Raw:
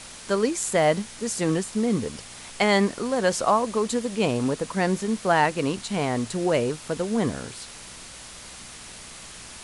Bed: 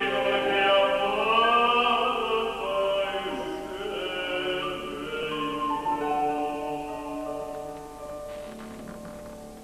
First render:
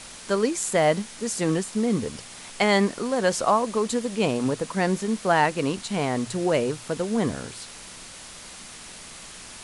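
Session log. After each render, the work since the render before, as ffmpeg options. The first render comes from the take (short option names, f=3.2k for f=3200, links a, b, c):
-af "bandreject=f=60:t=h:w=4,bandreject=f=120:t=h:w=4"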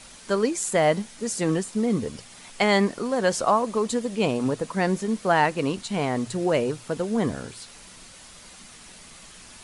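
-af "afftdn=nr=6:nf=-42"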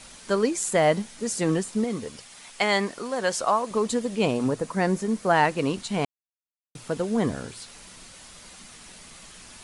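-filter_complex "[0:a]asettb=1/sr,asplit=3[a][b][c];[a]atrim=end=1.844[d];[b]atrim=start=1.84:end=3.71,asetpts=PTS-STARTPTS,afade=t=in:d=0.004:c=qsin,afade=t=out:st=1.866:d=0.004:c=qsin,lowshelf=f=430:g=-9[e];[c]atrim=start=3.706[f];[d][e]acrossfade=d=0.004:c1=hsin:c2=qsin[g];[g][f]acrossfade=d=0.004:c1=qsin:c2=hsin,asettb=1/sr,asplit=3[h][i][j];[h]atrim=end=4.464[k];[i]atrim=start=4.46:end=5.34,asetpts=PTS-STARTPTS,afade=t=in:d=0.004:c=qsin,afade=t=out:st=0.876:d=0.004:c=qsin,equalizer=f=3.3k:t=o:w=1:g=-4[l];[j]atrim=start=5.336[m];[k][l]acrossfade=d=0.004:c1=hsin:c2=qsin[n];[n][m]acrossfade=d=0.004:c1=qsin:c2=hsin,asplit=3[o][p][q];[o]atrim=end=6.05,asetpts=PTS-STARTPTS,afade=t=out:st=6.046:d=0.004:c=hsin[r];[p]atrim=start=6.05:end=6.75,asetpts=PTS-STARTPTS,volume=0[s];[q]atrim=start=6.75,asetpts=PTS-STARTPTS,afade=t=in:d=0.004:c=hsin[t];[r][s][t]concat=n=3:v=0:a=1"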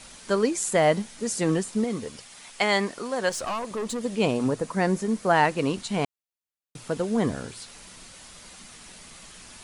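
-filter_complex "[0:a]asettb=1/sr,asplit=3[a][b][c];[a]atrim=end=3.294[d];[b]atrim=start=3.29:end=4.03,asetpts=PTS-STARTPTS,afade=t=in:d=0.004:c=qsin,afade=t=out:st=0.736:d=0.004:c=qsin,aeval=exprs='(tanh(20*val(0)+0.25)-tanh(0.25))/20':c=same[e];[c]atrim=start=4.026[f];[d][e]acrossfade=d=0.004:c1=hsin:c2=qsin[g];[g][f]acrossfade=d=0.004:c1=qsin:c2=hsin"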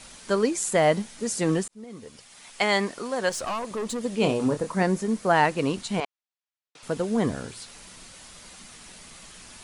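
-filter_complex "[0:a]asettb=1/sr,asplit=3[a][b][c];[a]atrim=end=4.194[d];[b]atrim=start=4.19:end=4.83,asetpts=PTS-STARTPTS,afade=t=in:d=0.004:c=qsin,afade=t=out:st=0.636:d=0.004:c=qsin,asplit=2[e][f];[f]adelay=27,volume=-8dB[g];[e][g]amix=inputs=2:normalize=0,atrim=end_sample=28224[h];[c]atrim=start=4.826[i];[d][h]acrossfade=d=0.004:c1=hsin:c2=qsin[j];[j][i]acrossfade=d=0.004:c1=qsin:c2=hsin,asettb=1/sr,asplit=3[k][l][m];[k]atrim=end=6.004[n];[l]atrim=start=6:end=6.83,asetpts=PTS-STARTPTS,afade=t=in:d=0.004:c=qsin,afade=t=out:st=0.826:d=0.004:c=qsin,highpass=610,lowpass=5.1k[o];[m]atrim=start=6.826[p];[n][o]acrossfade=d=0.004:c1=hsin:c2=qsin[q];[q][p]acrossfade=d=0.004:c1=qsin:c2=hsin,asplit=2[r][s];[r]atrim=end=1.68,asetpts=PTS-STARTPTS,afade=t=out:st=1.676:d=0.004:c=hsin[t];[s]atrim=start=1.68,asetpts=PTS-STARTPTS,afade=t=in:d=0.95[u];[t][u]concat=n=2:v=0:a=1"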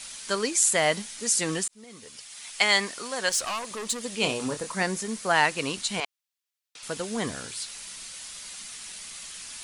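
-af "tiltshelf=f=1.3k:g=-8"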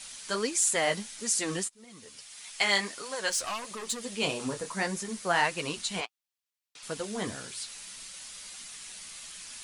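-af "flanger=delay=4.8:depth=6.8:regen=-25:speed=1.6:shape=triangular,asoftclip=type=tanh:threshold=-10.5dB"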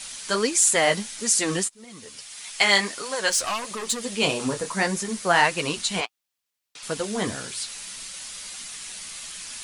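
-af "volume=7dB"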